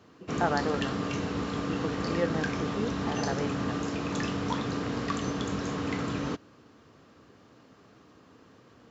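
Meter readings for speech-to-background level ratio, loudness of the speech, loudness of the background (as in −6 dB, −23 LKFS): −2.5 dB, −34.5 LKFS, −32.0 LKFS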